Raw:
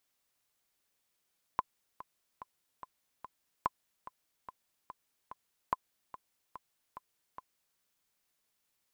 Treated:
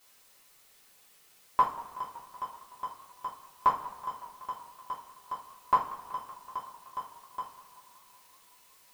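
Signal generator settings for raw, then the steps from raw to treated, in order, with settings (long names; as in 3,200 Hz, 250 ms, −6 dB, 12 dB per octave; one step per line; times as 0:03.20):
click track 145 BPM, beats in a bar 5, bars 3, 1,020 Hz, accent 16 dB −15.5 dBFS
mu-law and A-law mismatch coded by mu
coupled-rooms reverb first 0.33 s, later 2.5 s, from −20 dB, DRR −8 dB
feedback echo with a swinging delay time 188 ms, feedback 77%, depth 125 cents, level −19 dB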